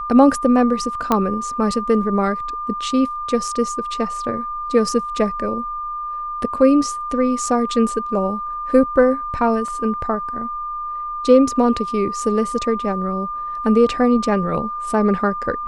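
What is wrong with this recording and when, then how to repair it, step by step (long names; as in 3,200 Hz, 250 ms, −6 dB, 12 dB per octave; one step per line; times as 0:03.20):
whistle 1,200 Hz −24 dBFS
0:01.12: click −4 dBFS
0:09.68: drop-out 2.6 ms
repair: click removal
notch filter 1,200 Hz, Q 30
repair the gap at 0:09.68, 2.6 ms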